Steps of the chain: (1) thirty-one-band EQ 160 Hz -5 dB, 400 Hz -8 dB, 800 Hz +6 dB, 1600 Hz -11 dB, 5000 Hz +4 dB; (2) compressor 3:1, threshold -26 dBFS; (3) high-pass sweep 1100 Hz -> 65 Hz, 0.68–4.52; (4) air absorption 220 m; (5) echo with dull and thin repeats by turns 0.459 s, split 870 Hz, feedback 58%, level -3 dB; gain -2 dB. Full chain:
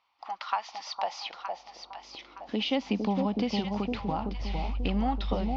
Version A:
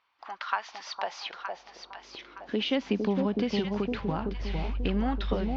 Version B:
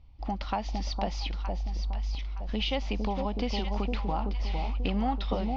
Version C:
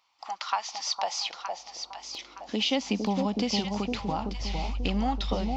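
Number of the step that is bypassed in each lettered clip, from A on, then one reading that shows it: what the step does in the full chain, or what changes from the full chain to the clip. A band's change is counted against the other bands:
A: 1, momentary loudness spread change +2 LU; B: 3, 125 Hz band +3.5 dB; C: 4, 4 kHz band +5.0 dB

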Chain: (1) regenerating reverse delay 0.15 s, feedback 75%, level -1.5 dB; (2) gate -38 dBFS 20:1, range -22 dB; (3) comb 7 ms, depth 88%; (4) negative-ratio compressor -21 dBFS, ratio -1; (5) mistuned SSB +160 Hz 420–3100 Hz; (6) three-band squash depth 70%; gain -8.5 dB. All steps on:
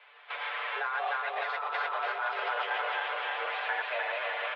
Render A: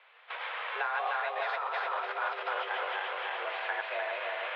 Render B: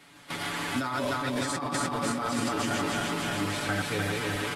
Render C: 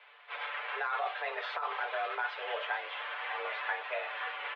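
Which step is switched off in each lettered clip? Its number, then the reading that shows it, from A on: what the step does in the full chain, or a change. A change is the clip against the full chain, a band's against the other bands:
3, 500 Hz band +2.5 dB; 5, 2 kHz band -5.5 dB; 1, crest factor change +2.5 dB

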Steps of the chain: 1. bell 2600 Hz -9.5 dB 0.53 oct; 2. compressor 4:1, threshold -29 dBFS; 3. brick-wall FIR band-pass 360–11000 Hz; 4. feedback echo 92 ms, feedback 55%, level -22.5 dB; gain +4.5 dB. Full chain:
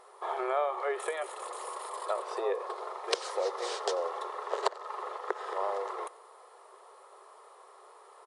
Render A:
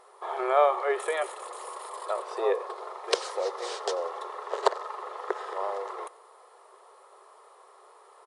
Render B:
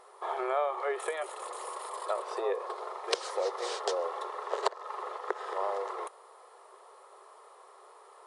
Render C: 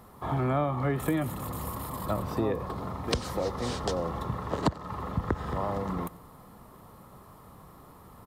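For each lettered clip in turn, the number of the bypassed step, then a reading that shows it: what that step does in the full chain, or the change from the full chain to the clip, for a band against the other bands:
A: 2, mean gain reduction 2.0 dB; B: 4, echo-to-direct -21.0 dB to none; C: 3, 250 Hz band +17.5 dB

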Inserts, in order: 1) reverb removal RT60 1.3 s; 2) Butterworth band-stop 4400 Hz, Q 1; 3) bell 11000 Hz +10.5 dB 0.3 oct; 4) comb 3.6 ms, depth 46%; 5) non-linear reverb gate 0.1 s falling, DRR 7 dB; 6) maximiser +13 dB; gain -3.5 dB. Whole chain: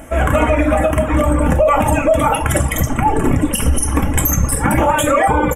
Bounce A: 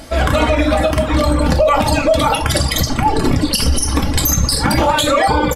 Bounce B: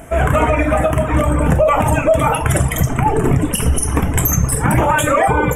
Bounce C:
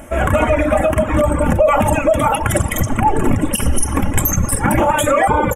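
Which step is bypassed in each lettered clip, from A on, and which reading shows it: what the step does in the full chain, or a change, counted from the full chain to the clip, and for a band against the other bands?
2, 4 kHz band +11.0 dB; 4, 125 Hz band +2.5 dB; 5, momentary loudness spread change +1 LU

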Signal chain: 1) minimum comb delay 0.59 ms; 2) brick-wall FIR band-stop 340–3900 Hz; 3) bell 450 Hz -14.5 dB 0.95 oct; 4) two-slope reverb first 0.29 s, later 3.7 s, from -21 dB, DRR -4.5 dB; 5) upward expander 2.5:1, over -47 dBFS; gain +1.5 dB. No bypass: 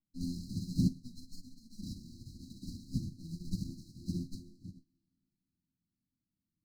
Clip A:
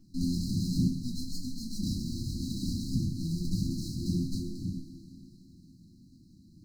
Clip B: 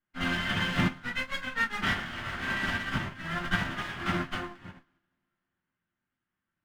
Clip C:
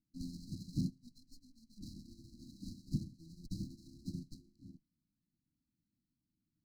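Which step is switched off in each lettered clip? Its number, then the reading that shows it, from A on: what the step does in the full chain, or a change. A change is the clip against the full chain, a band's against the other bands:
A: 5, crest factor change -6.5 dB; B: 2, 500 Hz band +13.5 dB; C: 4, momentary loudness spread change +1 LU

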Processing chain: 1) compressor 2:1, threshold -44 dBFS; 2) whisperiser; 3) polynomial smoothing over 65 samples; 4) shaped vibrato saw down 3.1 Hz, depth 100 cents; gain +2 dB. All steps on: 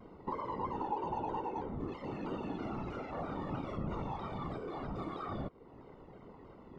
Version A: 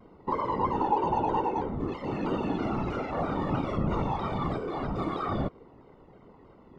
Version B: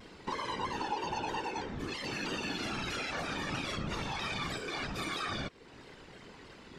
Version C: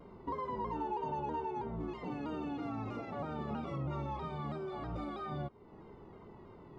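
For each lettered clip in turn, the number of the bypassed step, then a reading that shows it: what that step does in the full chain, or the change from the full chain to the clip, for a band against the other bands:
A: 1, mean gain reduction 7.5 dB; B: 3, 4 kHz band +20.0 dB; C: 2, 125 Hz band +1.5 dB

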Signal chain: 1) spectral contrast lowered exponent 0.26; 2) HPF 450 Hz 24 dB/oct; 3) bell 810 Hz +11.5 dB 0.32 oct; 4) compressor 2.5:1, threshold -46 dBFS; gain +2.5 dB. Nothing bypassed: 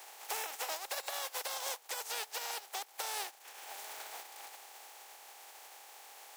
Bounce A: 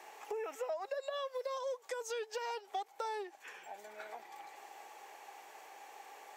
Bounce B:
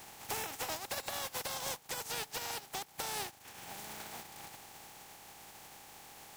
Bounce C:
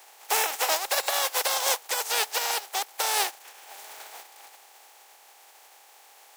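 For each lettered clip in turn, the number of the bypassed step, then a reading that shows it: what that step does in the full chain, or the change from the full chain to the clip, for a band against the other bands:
1, 500 Hz band +13.5 dB; 2, 250 Hz band +14.0 dB; 4, mean gain reduction 6.5 dB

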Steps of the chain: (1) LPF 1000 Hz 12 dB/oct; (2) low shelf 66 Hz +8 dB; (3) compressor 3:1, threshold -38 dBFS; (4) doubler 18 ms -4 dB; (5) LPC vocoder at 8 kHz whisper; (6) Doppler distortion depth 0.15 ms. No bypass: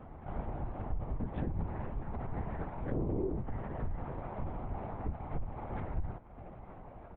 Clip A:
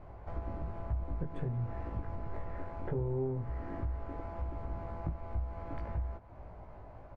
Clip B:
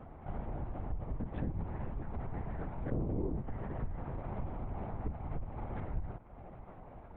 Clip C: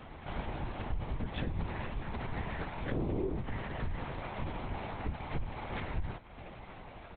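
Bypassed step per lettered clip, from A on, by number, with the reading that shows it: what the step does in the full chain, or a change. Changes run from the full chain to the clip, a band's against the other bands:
5, 125 Hz band +3.5 dB; 4, 125 Hz band +2.0 dB; 1, 2 kHz band +10.0 dB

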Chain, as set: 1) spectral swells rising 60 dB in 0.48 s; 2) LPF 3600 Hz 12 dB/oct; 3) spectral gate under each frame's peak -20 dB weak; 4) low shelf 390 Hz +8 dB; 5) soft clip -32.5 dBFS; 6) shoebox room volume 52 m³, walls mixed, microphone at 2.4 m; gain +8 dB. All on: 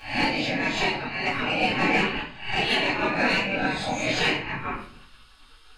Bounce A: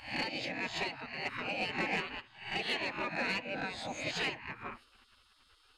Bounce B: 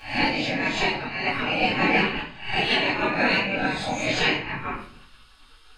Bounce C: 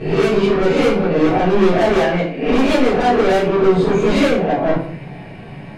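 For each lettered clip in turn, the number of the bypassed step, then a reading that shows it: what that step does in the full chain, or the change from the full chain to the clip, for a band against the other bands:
6, echo-to-direct 11.5 dB to none; 5, distortion -19 dB; 3, 4 kHz band -13.5 dB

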